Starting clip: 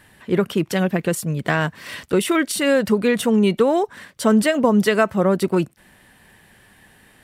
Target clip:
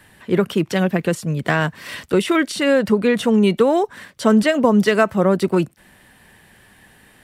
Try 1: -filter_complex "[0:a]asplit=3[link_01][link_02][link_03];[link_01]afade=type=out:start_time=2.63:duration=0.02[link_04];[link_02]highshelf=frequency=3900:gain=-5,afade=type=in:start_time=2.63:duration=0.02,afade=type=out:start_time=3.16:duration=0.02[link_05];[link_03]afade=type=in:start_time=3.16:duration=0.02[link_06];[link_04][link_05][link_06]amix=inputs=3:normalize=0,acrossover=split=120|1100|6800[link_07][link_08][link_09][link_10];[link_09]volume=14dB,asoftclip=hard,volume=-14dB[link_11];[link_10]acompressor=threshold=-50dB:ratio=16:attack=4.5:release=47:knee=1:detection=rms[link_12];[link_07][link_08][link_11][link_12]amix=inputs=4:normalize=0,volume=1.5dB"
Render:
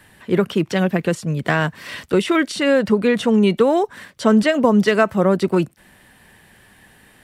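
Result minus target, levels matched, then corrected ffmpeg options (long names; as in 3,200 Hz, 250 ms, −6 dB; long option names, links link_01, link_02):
downward compressor: peak gain reduction +9 dB
-filter_complex "[0:a]asplit=3[link_01][link_02][link_03];[link_01]afade=type=out:start_time=2.63:duration=0.02[link_04];[link_02]highshelf=frequency=3900:gain=-5,afade=type=in:start_time=2.63:duration=0.02,afade=type=out:start_time=3.16:duration=0.02[link_05];[link_03]afade=type=in:start_time=3.16:duration=0.02[link_06];[link_04][link_05][link_06]amix=inputs=3:normalize=0,acrossover=split=120|1100|6800[link_07][link_08][link_09][link_10];[link_09]volume=14dB,asoftclip=hard,volume=-14dB[link_11];[link_10]acompressor=threshold=-40.5dB:ratio=16:attack=4.5:release=47:knee=1:detection=rms[link_12];[link_07][link_08][link_11][link_12]amix=inputs=4:normalize=0,volume=1.5dB"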